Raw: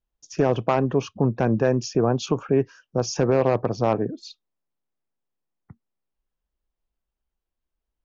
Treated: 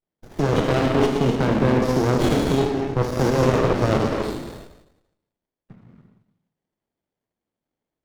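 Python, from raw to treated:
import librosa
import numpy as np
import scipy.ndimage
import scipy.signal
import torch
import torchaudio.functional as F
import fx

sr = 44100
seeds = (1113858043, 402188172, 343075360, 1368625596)

y = fx.spec_trails(x, sr, decay_s=0.88)
y = scipy.signal.sosfilt(scipy.signal.butter(4, 140.0, 'highpass', fs=sr, output='sos'), y)
y = fx.peak_eq(y, sr, hz=3500.0, db=11.5, octaves=0.76)
y = fx.level_steps(y, sr, step_db=11)
y = fx.rev_gated(y, sr, seeds[0], gate_ms=320, shape='flat', drr_db=0.0)
y = fx.running_max(y, sr, window=33)
y = y * librosa.db_to_amplitude(3.0)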